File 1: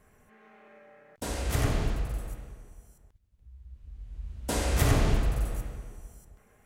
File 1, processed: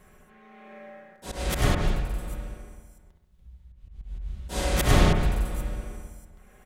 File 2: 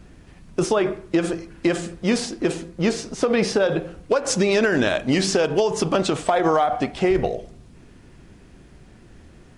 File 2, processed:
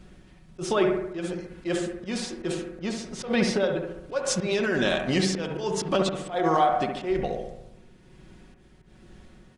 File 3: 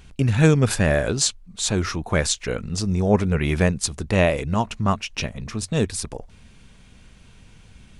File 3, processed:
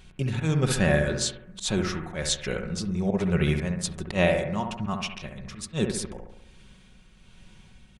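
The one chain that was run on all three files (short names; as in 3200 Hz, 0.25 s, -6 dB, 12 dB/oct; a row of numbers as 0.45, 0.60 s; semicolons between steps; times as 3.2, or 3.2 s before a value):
bell 3500 Hz +4.5 dB 0.53 oct; comb 5.4 ms, depth 44%; auto swell 0.101 s; tremolo 1.2 Hz, depth 44%; on a send: analogue delay 68 ms, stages 1024, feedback 56%, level -5.5 dB; on the sum: match loudness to -27 LUFS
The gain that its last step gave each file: +5.0, -4.0, -4.5 dB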